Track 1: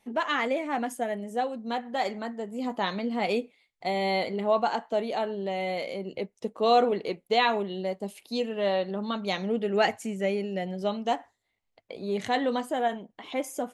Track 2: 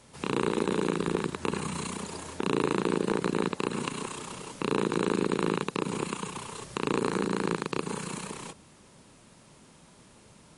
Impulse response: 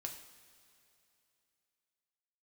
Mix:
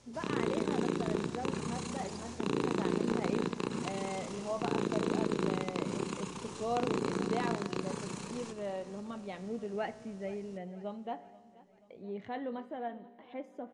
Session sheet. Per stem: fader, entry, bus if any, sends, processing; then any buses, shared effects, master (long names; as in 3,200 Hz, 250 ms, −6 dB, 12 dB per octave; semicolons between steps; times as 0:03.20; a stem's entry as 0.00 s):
−9.0 dB, 0.00 s, no send, echo send −20 dB, low-pass filter 2,400 Hz 12 dB per octave
−3.0 dB, 0.00 s, no send, echo send −15.5 dB, low-pass filter 8,100 Hz 12 dB per octave; parametric band 5,800 Hz +7.5 dB 0.78 octaves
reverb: not used
echo: repeating echo 482 ms, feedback 57%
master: low-shelf EQ 470 Hz +5.5 dB; tuned comb filter 59 Hz, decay 1.7 s, harmonics all, mix 50%